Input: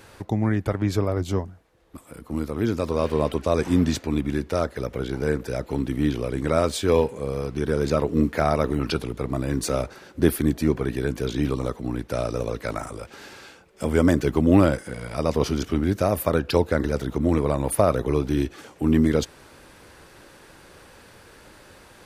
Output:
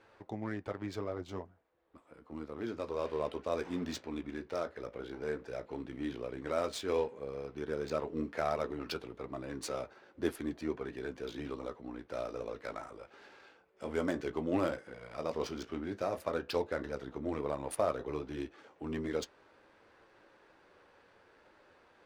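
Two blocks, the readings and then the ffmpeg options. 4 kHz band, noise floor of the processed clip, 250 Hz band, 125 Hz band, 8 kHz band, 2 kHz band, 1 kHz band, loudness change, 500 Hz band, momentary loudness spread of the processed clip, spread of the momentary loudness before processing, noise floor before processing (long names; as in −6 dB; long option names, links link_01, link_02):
−12.0 dB, −65 dBFS, −16.5 dB, −22.0 dB, −15.0 dB, −11.5 dB, −11.0 dB, −14.0 dB, −12.0 dB, 11 LU, 10 LU, −50 dBFS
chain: -af "flanger=delay=8.8:depth=9.9:regen=-48:speed=0.1:shape=triangular,bass=frequency=250:gain=-12,treble=frequency=4000:gain=3,adynamicsmooth=sensitivity=7:basefreq=2500,volume=-7dB"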